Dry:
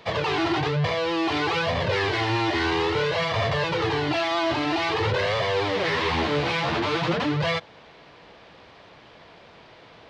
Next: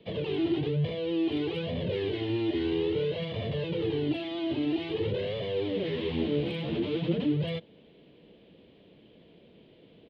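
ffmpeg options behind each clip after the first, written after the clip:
ffmpeg -i in.wav -filter_complex "[0:a]firequalizer=gain_entry='entry(110,0);entry(190,9);entry(460,4);entry(770,-12);entry(1200,-18);entry(3100,0);entry(5600,-22)':delay=0.05:min_phase=1,acrossover=split=330|1000|2300[link_01][link_02][link_03][link_04];[link_04]asoftclip=type=hard:threshold=-29dB[link_05];[link_01][link_02][link_03][link_05]amix=inputs=4:normalize=0,volume=-7.5dB" out.wav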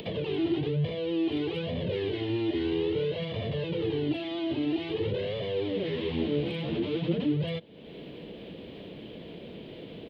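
ffmpeg -i in.wav -af "acompressor=mode=upward:threshold=-30dB:ratio=2.5" out.wav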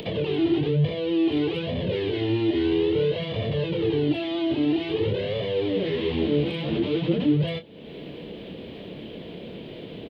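ffmpeg -i in.wav -filter_complex "[0:a]asplit=2[link_01][link_02];[link_02]adelay=27,volume=-10dB[link_03];[link_01][link_03]amix=inputs=2:normalize=0,volume=4.5dB" out.wav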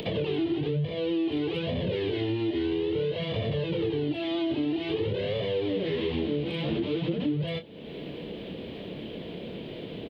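ffmpeg -i in.wav -af "acompressor=threshold=-25dB:ratio=6" out.wav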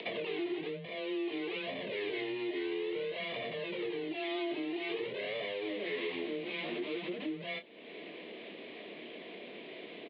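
ffmpeg -i in.wav -af "highpass=480,equalizer=frequency=500:width_type=q:width=4:gain=-9,equalizer=frequency=840:width_type=q:width=4:gain=-7,equalizer=frequency=1400:width_type=q:width=4:gain=-6,equalizer=frequency=2100:width_type=q:width=4:gain=5,equalizer=frequency=3100:width_type=q:width=4:gain=-6,lowpass=frequency=3700:width=0.5412,lowpass=frequency=3700:width=1.3066,afreqshift=17" out.wav

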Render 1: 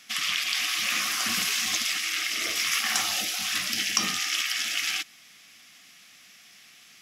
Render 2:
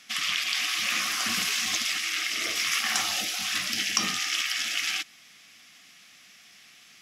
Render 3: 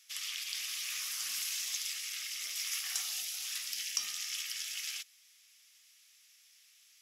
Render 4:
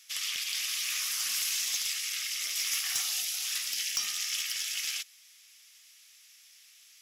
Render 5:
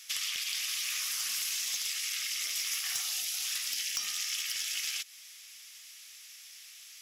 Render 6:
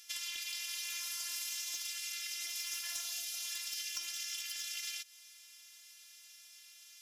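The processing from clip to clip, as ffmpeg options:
ffmpeg -i in.wav -af "highshelf=frequency=12000:gain=-7.5" out.wav
ffmpeg -i in.wav -af "aderivative,volume=-5.5dB" out.wav
ffmpeg -i in.wav -af "asoftclip=type=hard:threshold=-29dB,volume=6dB" out.wav
ffmpeg -i in.wav -af "acompressor=threshold=-39dB:ratio=4,volume=6.5dB" out.wav
ffmpeg -i in.wav -af "afftfilt=real='hypot(re,im)*cos(PI*b)':imag='0':win_size=512:overlap=0.75,volume=-3dB" out.wav

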